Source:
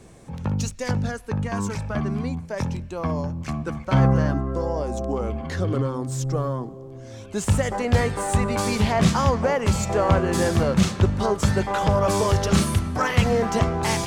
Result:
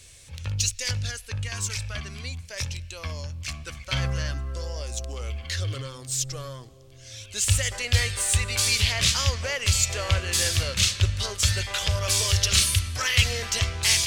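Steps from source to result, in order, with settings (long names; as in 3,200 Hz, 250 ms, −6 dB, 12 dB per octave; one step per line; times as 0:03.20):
drawn EQ curve 100 Hz 0 dB, 180 Hz −20 dB, 390 Hz −15 dB, 560 Hz −9 dB, 810 Hz −16 dB, 2,700 Hz +10 dB, 4,400 Hz +12 dB, 7,300 Hz +10 dB
level −1.5 dB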